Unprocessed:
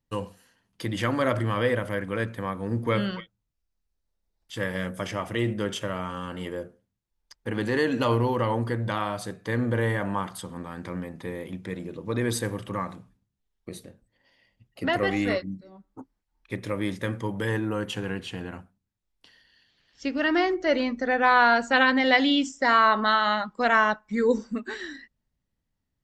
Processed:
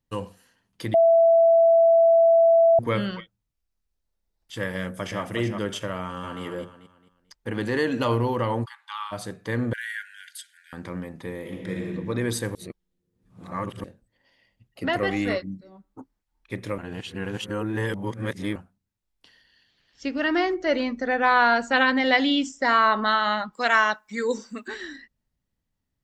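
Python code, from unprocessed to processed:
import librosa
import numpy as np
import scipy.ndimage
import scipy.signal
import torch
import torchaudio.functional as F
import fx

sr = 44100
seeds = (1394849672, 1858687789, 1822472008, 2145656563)

y = fx.echo_throw(x, sr, start_s=4.74, length_s=0.47, ms=370, feedback_pct=25, wet_db=-6.0)
y = fx.echo_throw(y, sr, start_s=6.01, length_s=0.41, ms=220, feedback_pct=35, wet_db=-5.5)
y = fx.cheby_ripple_highpass(y, sr, hz=820.0, ripple_db=9, at=(8.64, 9.11), fade=0.02)
y = fx.brickwall_highpass(y, sr, low_hz=1400.0, at=(9.73, 10.73))
y = fx.reverb_throw(y, sr, start_s=11.39, length_s=0.48, rt60_s=1.8, drr_db=-1.0)
y = fx.tilt_eq(y, sr, slope=3.0, at=(23.53, 24.68))
y = fx.edit(y, sr, fx.bleep(start_s=0.94, length_s=1.85, hz=665.0, db=-13.0),
    fx.reverse_span(start_s=12.55, length_s=1.29),
    fx.reverse_span(start_s=16.78, length_s=1.78), tone=tone)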